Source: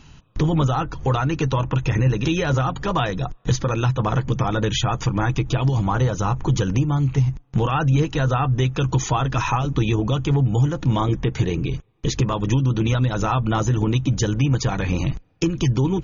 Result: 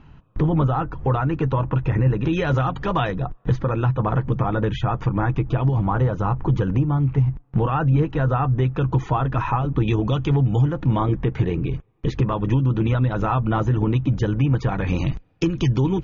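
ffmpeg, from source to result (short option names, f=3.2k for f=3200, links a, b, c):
-af "asetnsamples=n=441:p=0,asendcmd='2.33 lowpass f 3100;3.12 lowpass f 1700;9.88 lowpass f 3600;10.62 lowpass f 2100;14.87 lowpass f 4200',lowpass=1.7k"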